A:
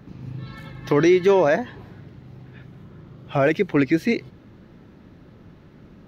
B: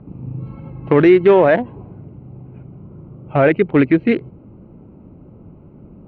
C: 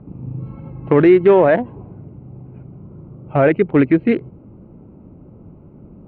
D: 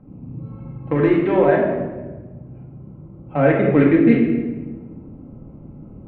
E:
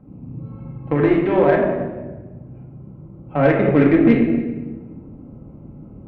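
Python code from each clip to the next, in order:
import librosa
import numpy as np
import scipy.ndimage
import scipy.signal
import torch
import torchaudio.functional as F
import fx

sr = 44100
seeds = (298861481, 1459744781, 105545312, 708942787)

y1 = fx.wiener(x, sr, points=25)
y1 = scipy.signal.sosfilt(scipy.signal.butter(4, 3100.0, 'lowpass', fs=sr, output='sos'), y1)
y1 = y1 * librosa.db_to_amplitude(6.0)
y2 = fx.high_shelf(y1, sr, hz=3200.0, db=-9.5)
y3 = fx.rider(y2, sr, range_db=10, speed_s=0.5)
y3 = fx.room_shoebox(y3, sr, seeds[0], volume_m3=870.0, walls='mixed', distance_m=2.1)
y3 = y3 * librosa.db_to_amplitude(-5.0)
y4 = y3 + 10.0 ** (-20.5 / 20.0) * np.pad(y3, (int(275 * sr / 1000.0), 0))[:len(y3)]
y4 = fx.cheby_harmonics(y4, sr, harmonics=(6,), levels_db=(-26,), full_scale_db=-1.5)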